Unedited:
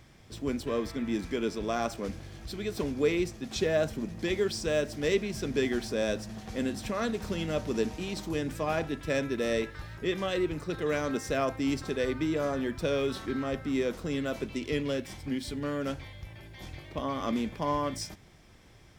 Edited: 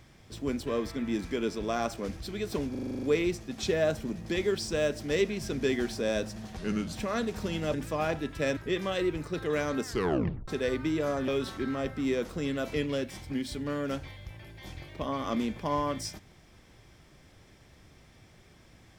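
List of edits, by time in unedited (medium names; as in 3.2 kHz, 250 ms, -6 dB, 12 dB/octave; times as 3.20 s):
2.17–2.42 s: delete
2.96 s: stutter 0.04 s, 9 plays
6.50–6.79 s: speed 81%
7.60–8.42 s: delete
9.25–9.93 s: delete
11.20 s: tape stop 0.64 s
12.64–12.96 s: delete
14.42–14.70 s: delete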